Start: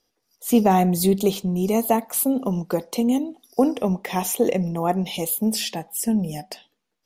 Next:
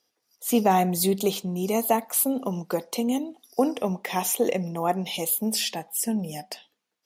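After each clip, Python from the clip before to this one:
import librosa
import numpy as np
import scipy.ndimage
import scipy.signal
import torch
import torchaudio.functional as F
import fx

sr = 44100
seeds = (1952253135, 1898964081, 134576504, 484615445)

y = scipy.signal.sosfilt(scipy.signal.butter(2, 89.0, 'highpass', fs=sr, output='sos'), x)
y = fx.low_shelf(y, sr, hz=430.0, db=-7.0)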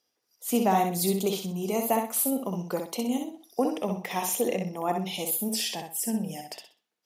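y = fx.echo_feedback(x, sr, ms=63, feedback_pct=27, wet_db=-5.0)
y = y * librosa.db_to_amplitude(-4.0)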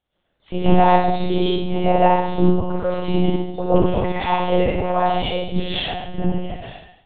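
y = fx.doubler(x, sr, ms=34.0, db=-8.0)
y = fx.rev_plate(y, sr, seeds[0], rt60_s=0.85, hf_ratio=0.85, predelay_ms=95, drr_db=-10.0)
y = fx.lpc_monotone(y, sr, seeds[1], pitch_hz=180.0, order=10)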